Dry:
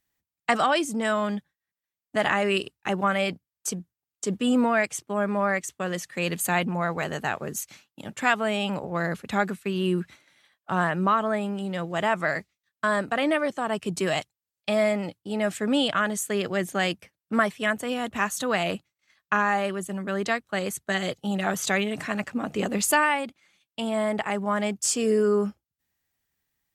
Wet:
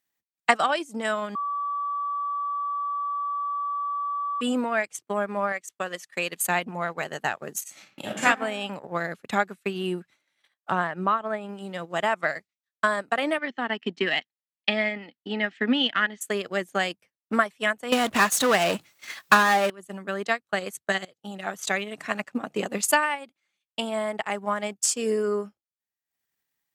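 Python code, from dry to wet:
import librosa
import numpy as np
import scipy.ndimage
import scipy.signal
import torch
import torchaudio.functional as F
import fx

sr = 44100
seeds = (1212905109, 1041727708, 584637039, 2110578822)

y = fx.low_shelf(x, sr, hz=330.0, db=-7.5, at=(5.52, 6.43))
y = fx.reverb_throw(y, sr, start_s=7.62, length_s=0.63, rt60_s=0.84, drr_db=-8.0)
y = fx.high_shelf(y, sr, hz=5400.0, db=-10.5, at=(10.71, 11.49))
y = fx.cabinet(y, sr, low_hz=190.0, low_slope=12, high_hz=4700.0, hz=(240.0, 590.0, 1100.0, 1900.0, 3000.0), db=(8, -8, -4, 10, 6), at=(13.38, 16.21))
y = fx.power_curve(y, sr, exponent=0.5, at=(17.92, 19.7))
y = fx.edit(y, sr, fx.bleep(start_s=1.35, length_s=3.06, hz=1150.0, db=-23.5),
    fx.fade_in_from(start_s=21.05, length_s=0.93, floor_db=-12.0), tone=tone)
y = fx.transient(y, sr, attack_db=7, sustain_db=-12)
y = fx.highpass(y, sr, hz=290.0, slope=6)
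y = F.gain(torch.from_numpy(y), -2.0).numpy()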